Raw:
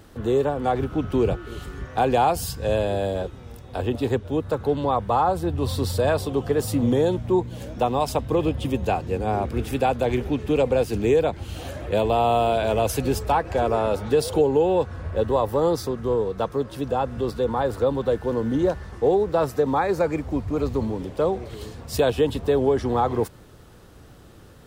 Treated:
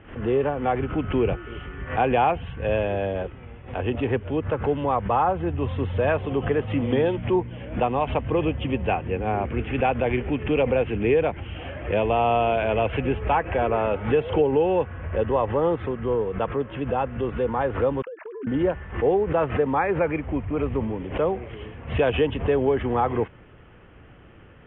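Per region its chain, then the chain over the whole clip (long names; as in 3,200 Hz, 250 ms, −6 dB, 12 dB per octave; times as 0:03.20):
0:06.70–0:07.36: high-shelf EQ 3,400 Hz +9.5 dB + mains-hum notches 60/120/180/240/300 Hz
0:18.02–0:18.47: three sine waves on the formant tracks + noise gate −40 dBFS, range −23 dB + downward compressor 20 to 1, threshold −32 dBFS
whole clip: Butterworth low-pass 3,200 Hz 96 dB per octave; parametric band 2,200 Hz +6.5 dB 0.97 octaves; background raised ahead of every attack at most 130 dB per second; level −1.5 dB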